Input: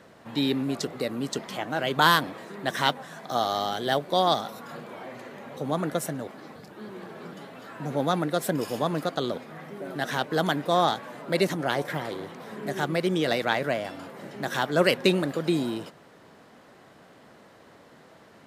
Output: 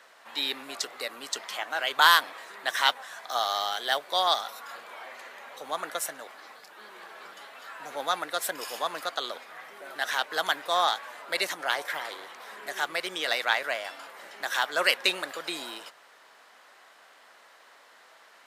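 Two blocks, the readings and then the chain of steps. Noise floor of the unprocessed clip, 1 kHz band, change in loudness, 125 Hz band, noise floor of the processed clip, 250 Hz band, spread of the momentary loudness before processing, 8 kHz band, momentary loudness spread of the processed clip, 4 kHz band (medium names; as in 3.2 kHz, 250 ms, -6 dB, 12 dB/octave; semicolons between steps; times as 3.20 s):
-53 dBFS, -1.0 dB, -1.0 dB, under -25 dB, -56 dBFS, -18.5 dB, 18 LU, +3.0 dB, 19 LU, +3.0 dB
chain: high-pass 1 kHz 12 dB/octave; trim +3 dB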